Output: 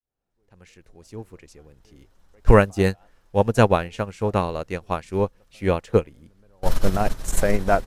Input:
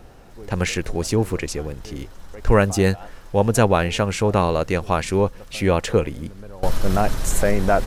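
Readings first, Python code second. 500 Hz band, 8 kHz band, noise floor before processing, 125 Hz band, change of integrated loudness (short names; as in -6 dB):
-1.5 dB, -7.5 dB, -42 dBFS, -3.0 dB, -1.5 dB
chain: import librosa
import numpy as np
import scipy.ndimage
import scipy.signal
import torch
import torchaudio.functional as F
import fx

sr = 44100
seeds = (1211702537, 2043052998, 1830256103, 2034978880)

y = fx.fade_in_head(x, sr, length_s=2.15)
y = fx.upward_expand(y, sr, threshold_db=-26.0, expansion=2.5)
y = F.gain(torch.from_numpy(y), 5.0).numpy()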